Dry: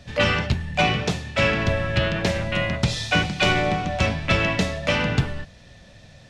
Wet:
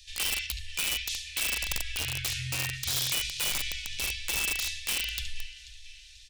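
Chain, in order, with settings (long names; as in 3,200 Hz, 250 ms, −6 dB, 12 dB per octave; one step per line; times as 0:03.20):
inverse Chebyshev band-stop filter 200–630 Hz, stop band 80 dB
flat-topped bell 760 Hz −13 dB
hum removal 119.4 Hz, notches 29
0:01.97–0:03.13: frequency shifter −140 Hz
single-tap delay 71 ms −12 dB
brickwall limiter −23 dBFS, peak gain reduction 11 dB
repeating echo 487 ms, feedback 43%, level −16 dB
wrap-around overflow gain 25 dB
high-shelf EQ 5,100 Hz +7 dB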